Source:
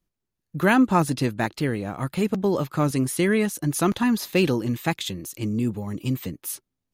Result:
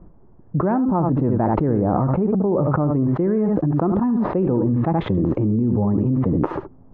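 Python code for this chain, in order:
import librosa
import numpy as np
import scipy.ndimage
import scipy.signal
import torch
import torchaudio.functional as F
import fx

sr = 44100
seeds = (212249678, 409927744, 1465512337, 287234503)

y = scipy.signal.sosfilt(scipy.signal.butter(4, 1000.0, 'lowpass', fs=sr, output='sos'), x)
y = y + 10.0 ** (-11.5 / 20.0) * np.pad(y, (int(74 * sr / 1000.0), 0))[:len(y)]
y = fx.env_flatten(y, sr, amount_pct=100)
y = y * 10.0 ** (-5.0 / 20.0)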